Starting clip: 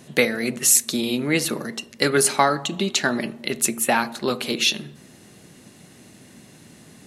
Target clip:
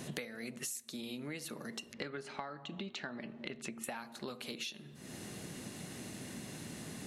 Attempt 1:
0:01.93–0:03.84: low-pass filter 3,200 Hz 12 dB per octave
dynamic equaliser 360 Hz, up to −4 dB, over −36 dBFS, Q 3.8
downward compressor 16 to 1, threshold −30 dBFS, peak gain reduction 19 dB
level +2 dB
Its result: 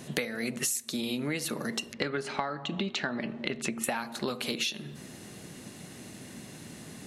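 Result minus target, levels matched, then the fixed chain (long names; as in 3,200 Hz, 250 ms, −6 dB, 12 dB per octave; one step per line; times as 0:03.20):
downward compressor: peak gain reduction −11 dB
0:01.93–0:03.84: low-pass filter 3,200 Hz 12 dB per octave
dynamic equaliser 360 Hz, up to −4 dB, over −36 dBFS, Q 3.8
downward compressor 16 to 1, threshold −41.5 dBFS, peak gain reduction 30 dB
level +2 dB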